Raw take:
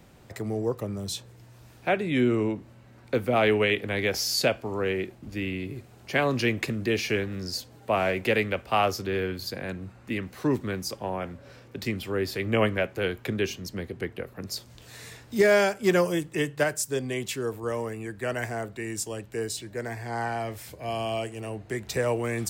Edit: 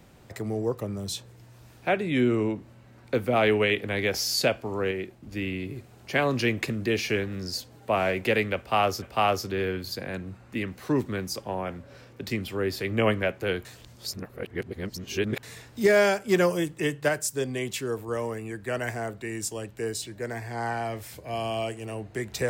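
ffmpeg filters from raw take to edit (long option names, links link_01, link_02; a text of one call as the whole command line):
ffmpeg -i in.wav -filter_complex "[0:a]asplit=6[link_01][link_02][link_03][link_04][link_05][link_06];[link_01]atrim=end=4.912[link_07];[link_02]atrim=start=4.908:end=5.312,asetpts=PTS-STARTPTS,volume=-3dB[link_08];[link_03]atrim=start=5.308:end=9.022[link_09];[link_04]atrim=start=8.568:end=13.202[link_10];[link_05]atrim=start=13.198:end=14.982,asetpts=PTS-STARTPTS,areverse[link_11];[link_06]atrim=start=14.978[link_12];[link_07][link_08]acrossfade=duration=0.004:curve1=hsin:curve2=hsin[link_13];[link_13][link_09]acrossfade=duration=0.004:curve1=hsin:curve2=hsin[link_14];[link_14][link_10]acrossfade=duration=0.004:curve1=hsin:curve2=hsin[link_15];[link_15][link_11]acrossfade=duration=0.004:curve1=hsin:curve2=hsin[link_16];[link_16][link_12]acrossfade=duration=0.004:curve1=hsin:curve2=hsin" out.wav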